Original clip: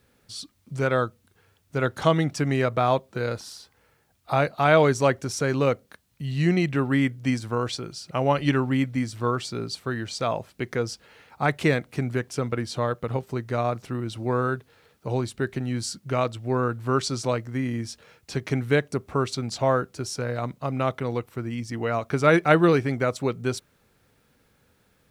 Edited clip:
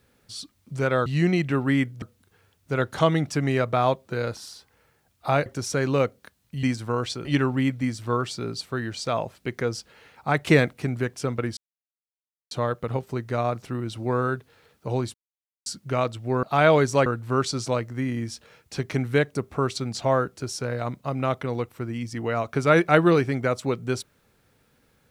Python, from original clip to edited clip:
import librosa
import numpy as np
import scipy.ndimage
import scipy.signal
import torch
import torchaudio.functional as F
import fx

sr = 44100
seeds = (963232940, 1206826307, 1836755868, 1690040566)

y = fx.edit(x, sr, fx.move(start_s=4.5, length_s=0.63, to_s=16.63),
    fx.move(start_s=6.3, length_s=0.96, to_s=1.06),
    fx.cut(start_s=7.88, length_s=0.51),
    fx.clip_gain(start_s=11.61, length_s=0.26, db=4.0),
    fx.insert_silence(at_s=12.71, length_s=0.94),
    fx.silence(start_s=15.34, length_s=0.52), tone=tone)